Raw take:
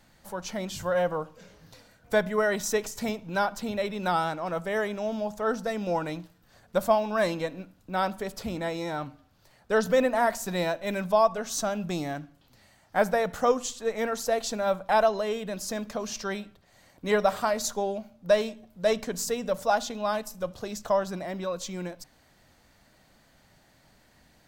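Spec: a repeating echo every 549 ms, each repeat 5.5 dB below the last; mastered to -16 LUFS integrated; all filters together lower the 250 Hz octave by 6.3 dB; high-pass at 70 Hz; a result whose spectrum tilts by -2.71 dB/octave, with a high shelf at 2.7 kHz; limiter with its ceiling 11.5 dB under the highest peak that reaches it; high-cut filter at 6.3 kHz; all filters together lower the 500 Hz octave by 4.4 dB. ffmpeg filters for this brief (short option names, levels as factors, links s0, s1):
-af "highpass=70,lowpass=6300,equalizer=f=250:t=o:g=-7.5,equalizer=f=500:t=o:g=-4.5,highshelf=f=2700:g=5.5,alimiter=limit=0.0708:level=0:latency=1,aecho=1:1:549|1098|1647|2196|2745|3294|3843:0.531|0.281|0.149|0.079|0.0419|0.0222|0.0118,volume=7.5"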